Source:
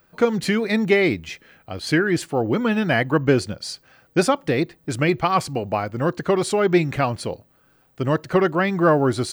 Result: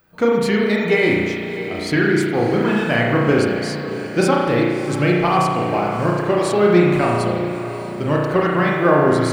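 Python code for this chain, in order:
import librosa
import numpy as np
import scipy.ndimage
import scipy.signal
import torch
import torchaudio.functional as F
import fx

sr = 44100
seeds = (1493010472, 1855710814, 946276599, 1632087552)

y = fx.echo_diffused(x, sr, ms=636, feedback_pct=55, wet_db=-11.5)
y = fx.rev_spring(y, sr, rt60_s=1.4, pass_ms=(34,), chirp_ms=50, drr_db=-2.5)
y = y * 10.0 ** (-1.0 / 20.0)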